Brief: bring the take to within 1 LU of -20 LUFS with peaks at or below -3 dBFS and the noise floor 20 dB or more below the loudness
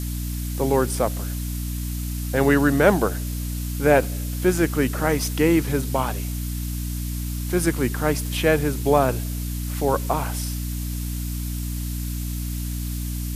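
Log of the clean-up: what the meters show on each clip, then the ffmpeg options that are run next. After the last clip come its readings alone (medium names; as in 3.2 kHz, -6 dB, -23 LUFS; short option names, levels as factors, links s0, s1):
hum 60 Hz; highest harmonic 300 Hz; hum level -25 dBFS; noise floor -28 dBFS; noise floor target -44 dBFS; loudness -23.5 LUFS; peak level -2.0 dBFS; loudness target -20.0 LUFS
-> -af "bandreject=f=60:t=h:w=4,bandreject=f=120:t=h:w=4,bandreject=f=180:t=h:w=4,bandreject=f=240:t=h:w=4,bandreject=f=300:t=h:w=4"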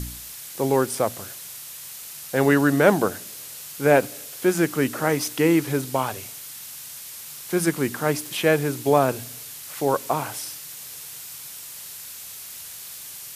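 hum not found; noise floor -39 dBFS; noise floor target -43 dBFS
-> -af "afftdn=nr=6:nf=-39"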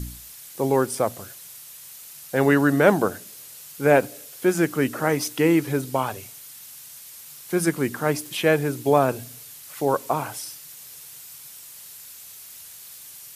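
noise floor -43 dBFS; loudness -22.5 LUFS; peak level -2.0 dBFS; loudness target -20.0 LUFS
-> -af "volume=1.33,alimiter=limit=0.708:level=0:latency=1"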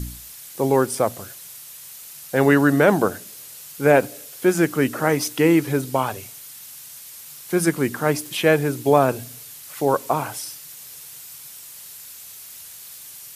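loudness -20.5 LUFS; peak level -3.0 dBFS; noise floor -41 dBFS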